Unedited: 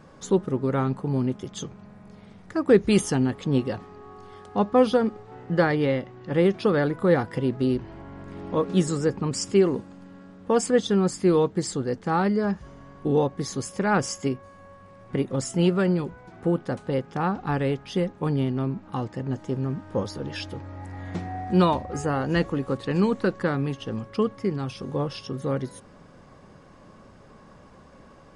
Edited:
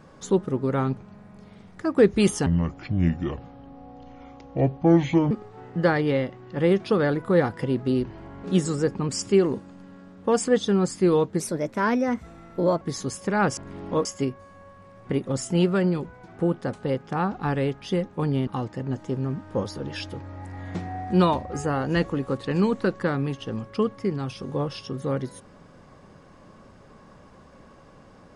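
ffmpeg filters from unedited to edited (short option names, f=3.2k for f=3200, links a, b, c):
-filter_complex "[0:a]asplit=10[a][b][c][d][e][f][g][h][i][j];[a]atrim=end=0.972[k];[b]atrim=start=1.678:end=3.174[l];[c]atrim=start=3.17:end=5.05,asetpts=PTS-STARTPTS,asetrate=29106,aresample=44100,atrim=end_sample=125618,asetpts=PTS-STARTPTS[m];[d]atrim=start=5.046:end=8.182[n];[e]atrim=start=8.658:end=11.624[o];[f]atrim=start=11.62:end=13.33,asetpts=PTS-STARTPTS,asetrate=53361,aresample=44100,atrim=end_sample=62323,asetpts=PTS-STARTPTS[p];[g]atrim=start=13.326:end=14.092[q];[h]atrim=start=8.178:end=8.662[r];[i]atrim=start=14.088:end=18.512[s];[j]atrim=start=18.868[t];[k][l]acrossfade=d=0.004:c1=hsin:c2=hsin[u];[u][m]acrossfade=d=0.004:c1=hsin:c2=hsin[v];[v][n]acrossfade=d=0.004:c1=hsin:c2=hsin[w];[w][o]acrossfade=d=0.004:c1=hsin:c2=hsin[x];[x][p]acrossfade=d=0.004:c1=hsin:c2=hsin[y];[y][q]acrossfade=d=0.004:c1=hsin:c2=hsin[z];[z][r]acrossfade=d=0.004:c1=hsin:c2=hsin[aa];[aa][s]acrossfade=d=0.004:c1=hsin:c2=hsin[ab];[ab][t]acrossfade=d=0.004:c1=hsin:c2=hsin"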